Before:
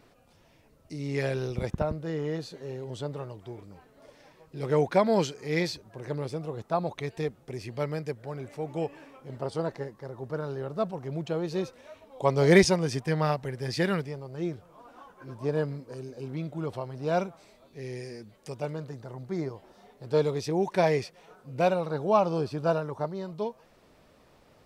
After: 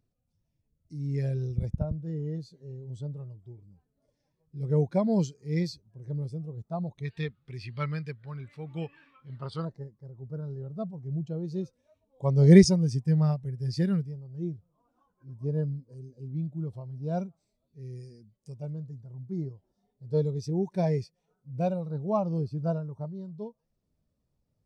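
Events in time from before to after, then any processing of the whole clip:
7.05–9.65 s: high-order bell 2.1 kHz +14 dB 2.4 oct
whole clip: tone controls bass +11 dB, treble +13 dB; spectral contrast expander 1.5:1; trim -2.5 dB

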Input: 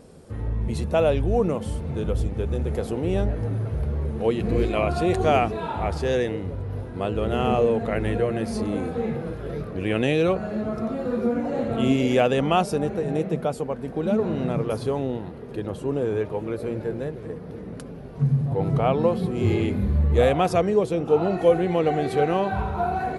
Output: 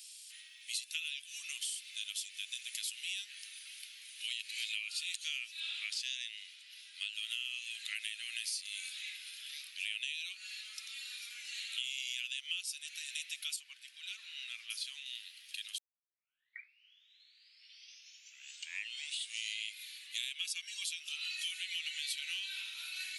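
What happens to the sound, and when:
5.60–7.13 s: Bessel low-pass 8 kHz
13.56–15.06 s: tilt EQ -3 dB/octave
15.78 s: tape start 3.88 s
20.35–20.84 s: comb 1.8 ms
whole clip: steep high-pass 2.7 kHz 36 dB/octave; compression 12:1, threshold -47 dBFS; trim +12 dB

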